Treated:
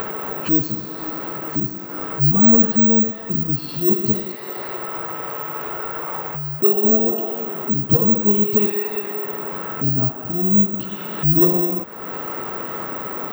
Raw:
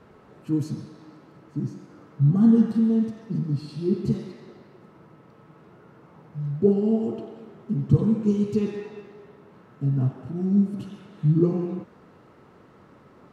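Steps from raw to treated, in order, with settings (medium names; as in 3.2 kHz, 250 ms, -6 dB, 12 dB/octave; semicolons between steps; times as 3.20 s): 4.35–6.84 s: peaking EQ 210 Hz -10 dB 1.3 oct; upward compressor, threshold -26 dBFS; overdrive pedal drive 21 dB, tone 2.8 kHz, clips at -5 dBFS; careless resampling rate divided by 2×, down filtered, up zero stuff; trim -1.5 dB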